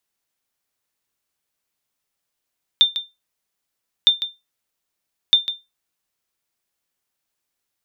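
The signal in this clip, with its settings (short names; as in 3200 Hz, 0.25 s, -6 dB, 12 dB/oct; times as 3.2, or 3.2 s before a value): sonar ping 3590 Hz, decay 0.21 s, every 1.26 s, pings 3, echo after 0.15 s, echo -11.5 dB -4.5 dBFS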